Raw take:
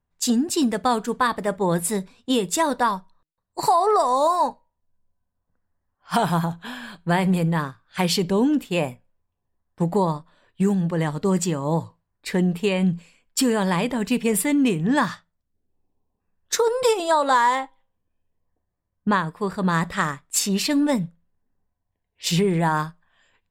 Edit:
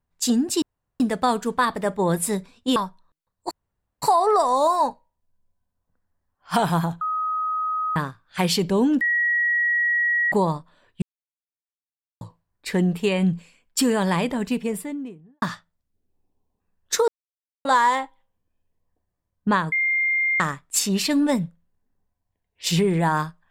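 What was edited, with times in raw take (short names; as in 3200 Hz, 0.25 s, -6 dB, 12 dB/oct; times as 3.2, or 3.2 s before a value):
0.62 insert room tone 0.38 s
2.38–2.87 cut
3.62 insert room tone 0.51 s
6.61–7.56 bleep 1260 Hz -22 dBFS
8.61–9.92 bleep 1910 Hz -18 dBFS
10.62–11.81 mute
13.72–15.02 studio fade out
16.68–17.25 mute
19.32–20 bleep 2110 Hz -18.5 dBFS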